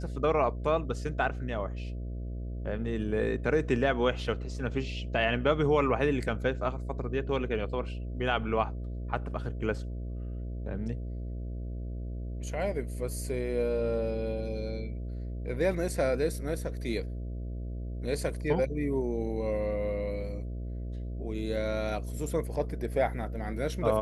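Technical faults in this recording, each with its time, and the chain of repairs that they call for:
mains buzz 60 Hz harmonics 11 −36 dBFS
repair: hum removal 60 Hz, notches 11

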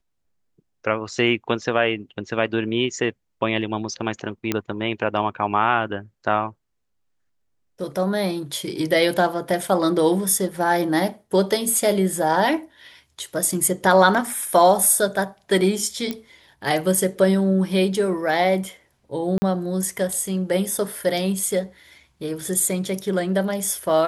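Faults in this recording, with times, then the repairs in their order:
0:04.52: click −7 dBFS
0:16.11: click −12 dBFS
0:19.38–0:19.42: drop-out 40 ms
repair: click removal
repair the gap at 0:19.38, 40 ms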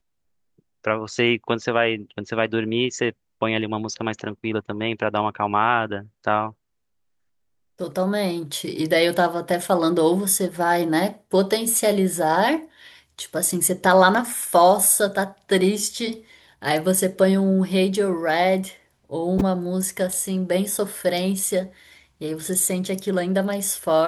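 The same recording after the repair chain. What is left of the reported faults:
none of them is left

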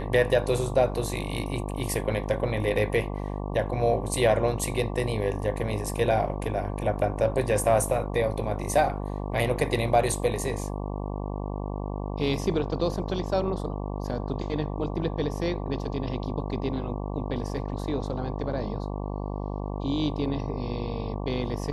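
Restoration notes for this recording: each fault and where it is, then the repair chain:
mains buzz 50 Hz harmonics 23 −32 dBFS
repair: hum removal 50 Hz, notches 23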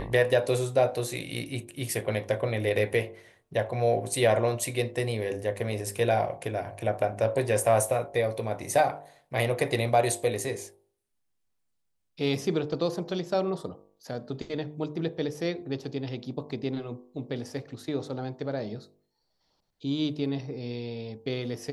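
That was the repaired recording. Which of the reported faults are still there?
none of them is left

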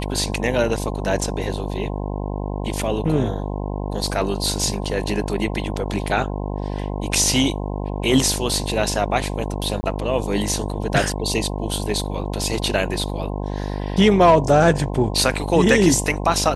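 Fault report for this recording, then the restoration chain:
mains buzz 50 Hz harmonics 21 −26 dBFS
0:04.85–0:04.86: drop-out 5.7 ms
0:09.81–0:09.83: drop-out 20 ms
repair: hum removal 50 Hz, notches 21
repair the gap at 0:04.85, 5.7 ms
repair the gap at 0:09.81, 20 ms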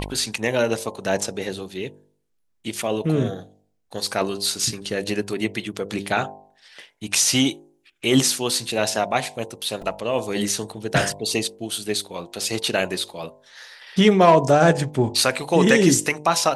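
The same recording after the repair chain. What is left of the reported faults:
none of them is left

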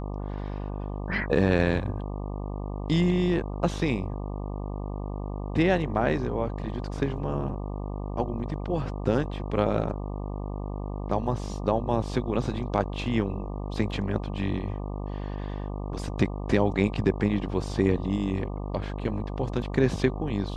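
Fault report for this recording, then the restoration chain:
mains buzz 50 Hz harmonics 24 −33 dBFS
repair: hum removal 50 Hz, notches 24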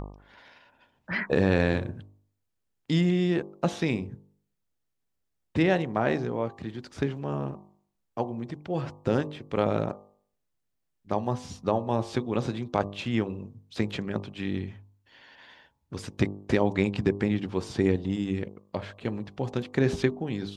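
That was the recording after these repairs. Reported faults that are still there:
none of them is left

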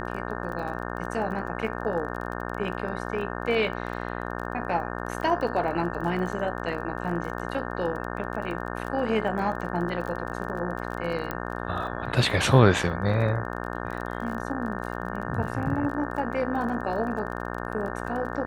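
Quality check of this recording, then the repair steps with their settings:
mains buzz 60 Hz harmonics 30 −33 dBFS
surface crackle 27 per second −34 dBFS
0:11.31: click −16 dBFS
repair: click removal
hum removal 60 Hz, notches 30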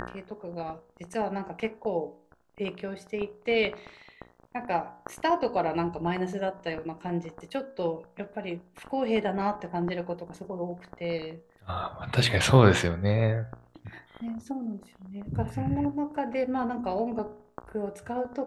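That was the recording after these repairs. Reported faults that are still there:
none of them is left

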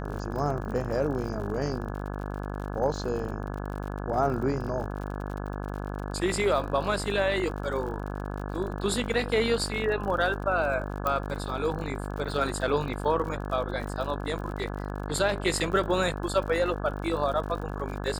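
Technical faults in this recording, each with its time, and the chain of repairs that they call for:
mains buzz 50 Hz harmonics 34 −34 dBFS
surface crackle 59 per second −36 dBFS
0:11.07: click −14 dBFS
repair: click removal
hum removal 50 Hz, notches 34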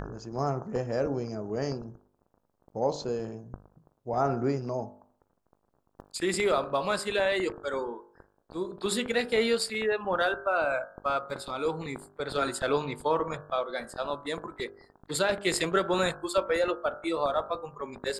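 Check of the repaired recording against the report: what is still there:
none of them is left

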